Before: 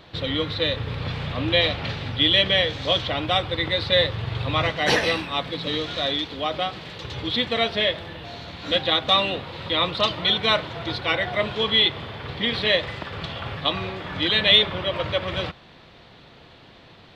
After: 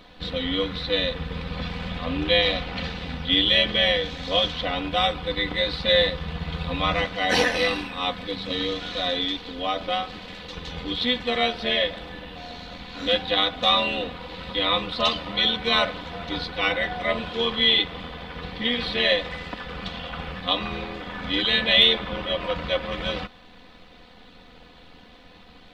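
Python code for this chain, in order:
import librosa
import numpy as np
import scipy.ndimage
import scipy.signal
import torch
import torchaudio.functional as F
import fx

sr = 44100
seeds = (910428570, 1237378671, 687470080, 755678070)

y = fx.dmg_noise_colour(x, sr, seeds[0], colour='brown', level_db=-53.0)
y = fx.stretch_grains(y, sr, factor=1.5, grain_ms=24.0)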